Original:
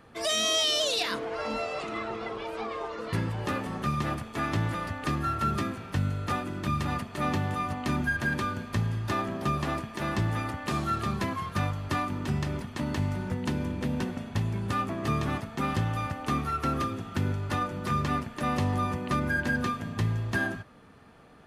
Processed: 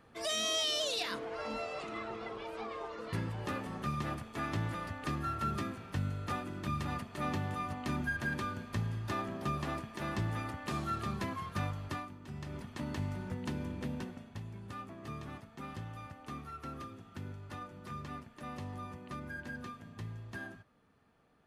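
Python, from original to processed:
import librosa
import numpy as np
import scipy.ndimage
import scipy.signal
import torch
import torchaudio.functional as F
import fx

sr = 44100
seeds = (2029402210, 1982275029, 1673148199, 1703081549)

y = fx.gain(x, sr, db=fx.line((11.85, -7.0), (12.19, -19.0), (12.64, -8.0), (13.85, -8.0), (14.4, -15.5)))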